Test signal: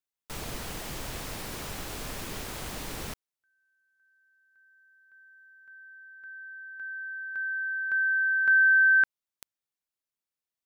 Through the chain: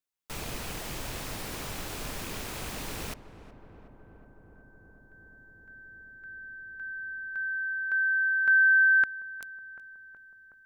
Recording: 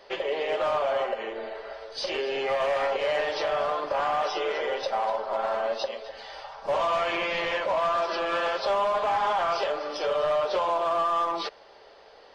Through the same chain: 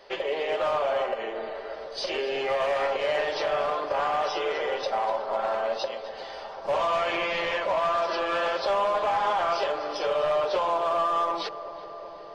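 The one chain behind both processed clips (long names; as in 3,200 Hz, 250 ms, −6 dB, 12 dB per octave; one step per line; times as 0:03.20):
loose part that buzzes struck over −41 dBFS, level −35 dBFS
feedback echo with a low-pass in the loop 370 ms, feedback 84%, low-pass 1,500 Hz, level −14 dB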